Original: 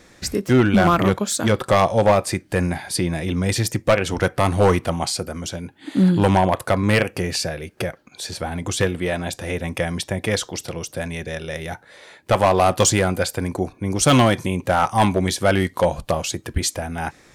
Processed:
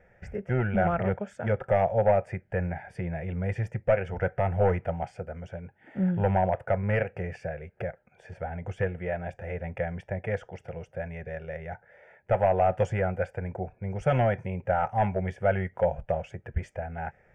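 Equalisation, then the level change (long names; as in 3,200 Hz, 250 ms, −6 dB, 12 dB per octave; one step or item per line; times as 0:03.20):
low-pass filter 1,600 Hz 12 dB per octave
phaser with its sweep stopped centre 1,100 Hz, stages 6
−5.0 dB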